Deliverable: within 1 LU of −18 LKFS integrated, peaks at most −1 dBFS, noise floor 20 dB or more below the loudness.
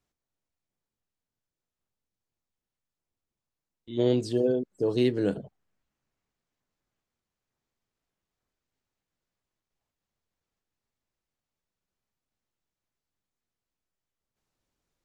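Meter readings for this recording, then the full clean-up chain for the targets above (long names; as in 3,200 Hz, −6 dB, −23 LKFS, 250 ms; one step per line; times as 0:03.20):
integrated loudness −27.0 LKFS; sample peak −12.5 dBFS; target loudness −18.0 LKFS
→ level +9 dB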